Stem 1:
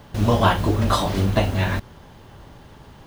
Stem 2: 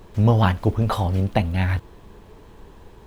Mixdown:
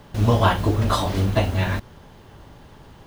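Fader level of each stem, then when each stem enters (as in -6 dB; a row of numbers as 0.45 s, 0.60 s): -1.5 dB, -9.5 dB; 0.00 s, 0.00 s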